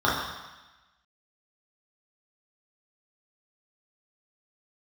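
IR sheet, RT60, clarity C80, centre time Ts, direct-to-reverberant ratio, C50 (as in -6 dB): 1.1 s, 4.5 dB, 68 ms, -7.5 dB, 2.0 dB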